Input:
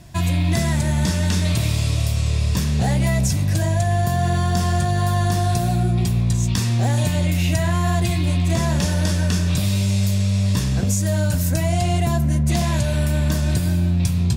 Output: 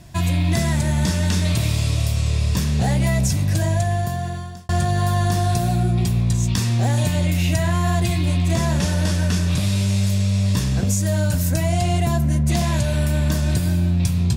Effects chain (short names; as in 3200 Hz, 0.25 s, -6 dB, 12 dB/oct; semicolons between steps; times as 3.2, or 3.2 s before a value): 3.75–4.69 fade out linear; 8.75–10.1 CVSD 64 kbps